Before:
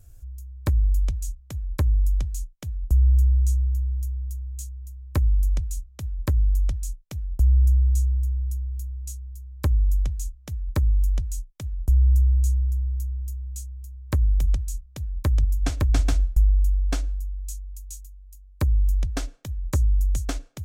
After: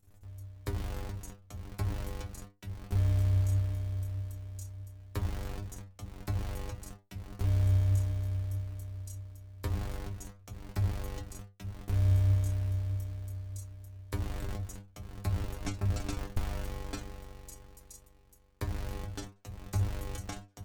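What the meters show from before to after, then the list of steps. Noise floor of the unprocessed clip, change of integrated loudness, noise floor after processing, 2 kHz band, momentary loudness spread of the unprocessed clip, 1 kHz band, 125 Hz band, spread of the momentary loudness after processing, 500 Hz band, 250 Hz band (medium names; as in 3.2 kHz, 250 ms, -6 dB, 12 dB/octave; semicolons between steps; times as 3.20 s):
-49 dBFS, -10.0 dB, -61 dBFS, -4.5 dB, 15 LU, -3.0 dB, -7.0 dB, 19 LU, -2.5 dB, -5.0 dB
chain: cycle switcher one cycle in 2, muted; flange 1.6 Hz, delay 6.1 ms, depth 6 ms, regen +72%; inharmonic resonator 98 Hz, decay 0.27 s, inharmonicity 0.002; trim +6.5 dB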